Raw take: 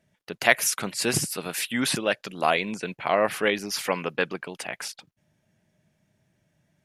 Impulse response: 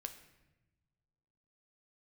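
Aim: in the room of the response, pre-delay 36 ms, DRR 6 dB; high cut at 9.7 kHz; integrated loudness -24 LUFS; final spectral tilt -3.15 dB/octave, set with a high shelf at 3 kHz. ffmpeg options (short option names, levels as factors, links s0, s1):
-filter_complex "[0:a]lowpass=9700,highshelf=f=3000:g=7,asplit=2[s0][s1];[1:a]atrim=start_sample=2205,adelay=36[s2];[s1][s2]afir=irnorm=-1:irlink=0,volume=0.708[s3];[s0][s3]amix=inputs=2:normalize=0,volume=0.841"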